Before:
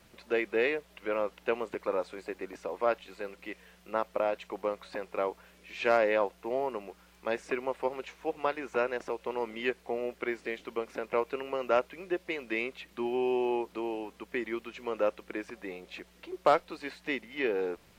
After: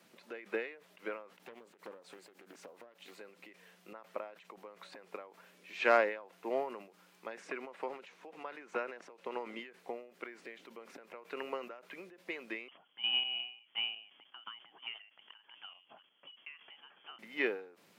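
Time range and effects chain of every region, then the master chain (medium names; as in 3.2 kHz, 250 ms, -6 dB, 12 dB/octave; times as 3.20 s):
1.42–3.19 s: treble shelf 7.9 kHz +9 dB + compression 2.5:1, threshold -44 dBFS + loudspeaker Doppler distortion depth 0.45 ms
7.40–9.59 s: high-pass 97 Hz + treble shelf 11 kHz -10.5 dB
12.68–17.19 s: square tremolo 2.8 Hz, depth 65%, duty 55% + frequency inversion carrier 3.3 kHz
whole clip: high-pass 170 Hz 24 dB/octave; dynamic bell 1.6 kHz, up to +6 dB, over -43 dBFS, Q 0.78; endings held to a fixed fall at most 110 dB/s; trim -3.5 dB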